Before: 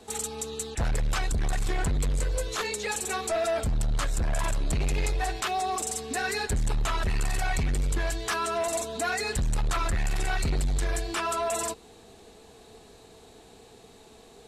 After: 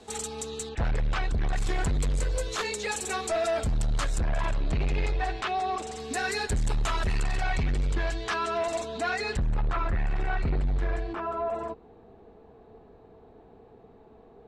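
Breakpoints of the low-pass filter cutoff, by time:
7,900 Hz
from 0:00.69 3,400 Hz
from 0:01.56 8,700 Hz
from 0:04.21 3,500 Hz
from 0:06.00 8,900 Hz
from 0:07.22 4,500 Hz
from 0:09.37 1,900 Hz
from 0:11.13 1,100 Hz

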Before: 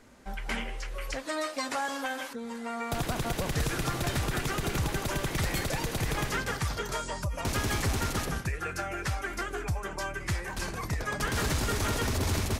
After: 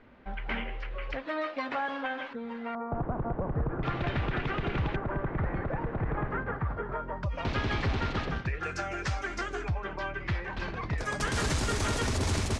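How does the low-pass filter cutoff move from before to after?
low-pass filter 24 dB per octave
3,100 Hz
from 0:02.75 1,200 Hz
from 0:03.83 3,000 Hz
from 0:04.96 1,600 Hz
from 0:07.23 3,900 Hz
from 0:08.63 6,600 Hz
from 0:09.68 3,700 Hz
from 0:10.98 9,400 Hz

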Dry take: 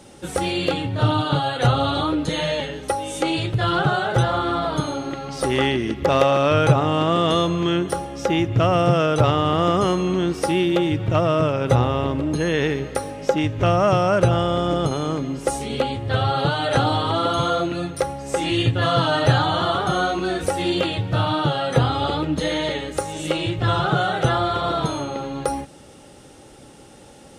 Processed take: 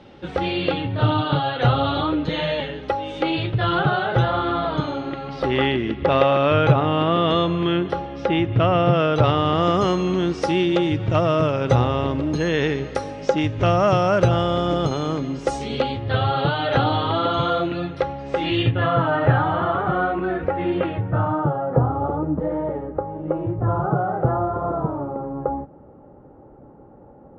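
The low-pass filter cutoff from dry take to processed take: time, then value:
low-pass filter 24 dB per octave
0:08.88 3,800 Hz
0:09.77 6,300 Hz
0:15.63 6,300 Hz
0:16.26 3,800 Hz
0:18.57 3,800 Hz
0:19.00 2,100 Hz
0:20.85 2,100 Hz
0:21.64 1,100 Hz

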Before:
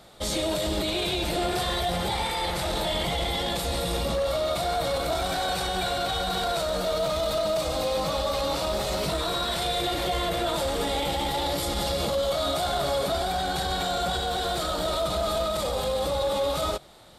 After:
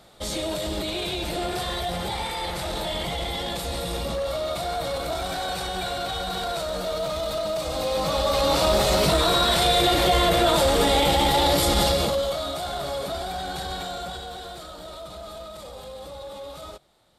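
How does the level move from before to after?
0:07.60 −1.5 dB
0:08.66 +7.5 dB
0:11.82 +7.5 dB
0:12.48 −3.5 dB
0:13.72 −3.5 dB
0:14.73 −12 dB

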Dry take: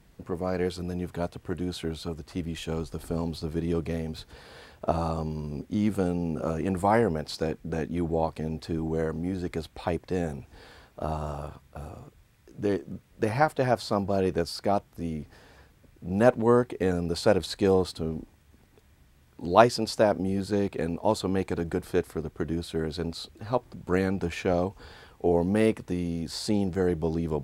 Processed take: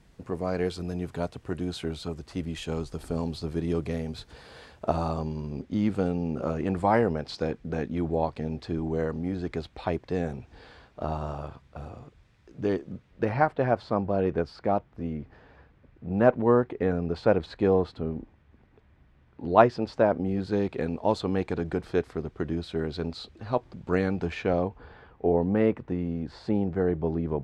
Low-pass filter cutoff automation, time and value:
0:04.70 9,100 Hz
0:05.50 4,900 Hz
0:12.88 4,900 Hz
0:13.49 2,300 Hz
0:20.08 2,300 Hz
0:20.64 4,600 Hz
0:24.29 4,600 Hz
0:24.81 1,900 Hz

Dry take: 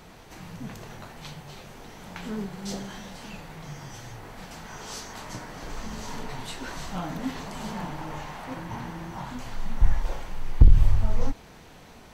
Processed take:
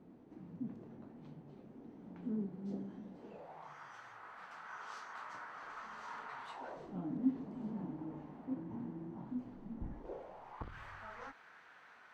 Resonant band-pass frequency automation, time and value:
resonant band-pass, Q 3
0:03.10 270 Hz
0:03.78 1,300 Hz
0:06.45 1,300 Hz
0:06.98 270 Hz
0:09.92 270 Hz
0:10.76 1,500 Hz

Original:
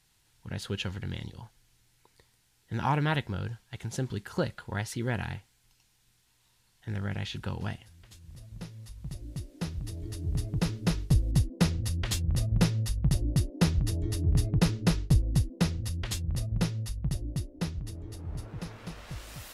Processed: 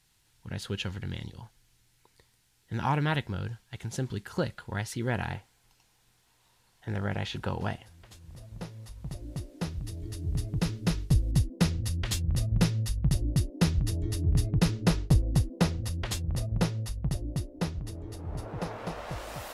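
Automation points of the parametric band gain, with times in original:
parametric band 690 Hz 2.2 octaves
0:04.95 −0.5 dB
0:05.36 +8 dB
0:09.40 +8 dB
0:09.90 −1 dB
0:14.62 −1 dB
0:15.05 +6 dB
0:18.18 +6 dB
0:18.65 +13.5 dB

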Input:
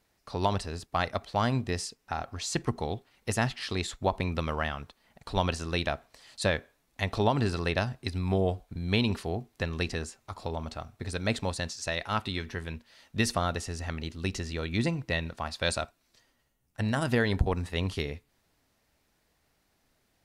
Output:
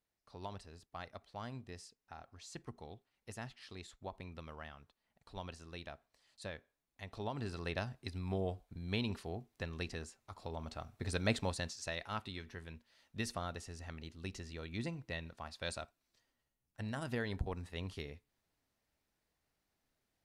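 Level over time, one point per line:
0:07.02 −18.5 dB
0:07.72 −10.5 dB
0:10.42 −10.5 dB
0:11.14 −3 dB
0:12.34 −12.5 dB

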